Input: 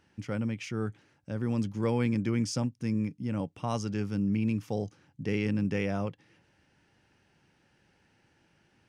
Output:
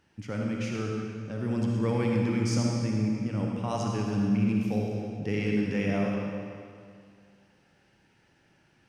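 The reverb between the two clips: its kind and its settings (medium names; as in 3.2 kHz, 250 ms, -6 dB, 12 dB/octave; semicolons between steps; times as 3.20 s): algorithmic reverb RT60 2.2 s, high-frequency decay 0.9×, pre-delay 20 ms, DRR -1.5 dB; trim -1 dB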